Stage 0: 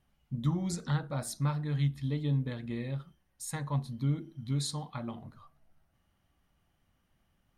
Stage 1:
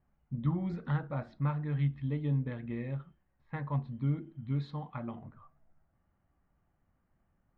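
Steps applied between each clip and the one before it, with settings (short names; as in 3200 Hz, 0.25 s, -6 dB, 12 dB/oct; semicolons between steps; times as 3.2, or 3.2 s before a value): LPF 2600 Hz 24 dB/oct; low-pass opened by the level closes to 1600 Hz, open at -29 dBFS; gain -1 dB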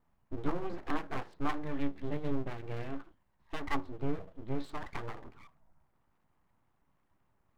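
bell 970 Hz +12.5 dB 0.24 oct; full-wave rectifier; gain +1 dB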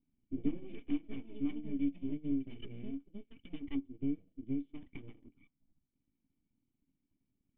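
echoes that change speed 0.145 s, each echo +7 st, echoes 2, each echo -6 dB; transient shaper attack +4 dB, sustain -9 dB; vocal tract filter i; gain +3 dB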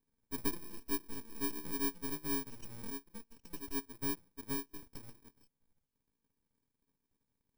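FFT order left unsorted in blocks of 64 samples; gain -2.5 dB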